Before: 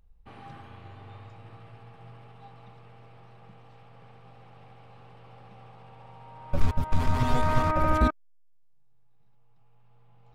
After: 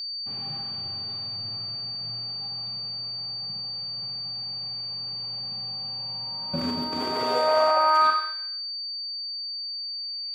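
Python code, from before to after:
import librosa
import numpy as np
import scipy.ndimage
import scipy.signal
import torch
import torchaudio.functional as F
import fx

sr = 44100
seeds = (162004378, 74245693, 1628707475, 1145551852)

y = fx.rev_schroeder(x, sr, rt60_s=0.83, comb_ms=29, drr_db=2.0)
y = fx.filter_sweep_highpass(y, sr, from_hz=140.0, to_hz=2300.0, start_s=6.23, end_s=8.79, q=3.2)
y = y + 10.0 ** (-29.0 / 20.0) * np.sin(2.0 * np.pi * 4600.0 * np.arange(len(y)) / sr)
y = y * librosa.db_to_amplitude(-1.5)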